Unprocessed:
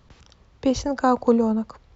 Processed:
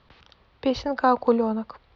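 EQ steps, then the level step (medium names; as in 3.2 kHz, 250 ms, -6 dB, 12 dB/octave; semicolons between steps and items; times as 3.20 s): steep low-pass 4.5 kHz 36 dB/octave; bass shelf 360 Hz -10 dB; +2.5 dB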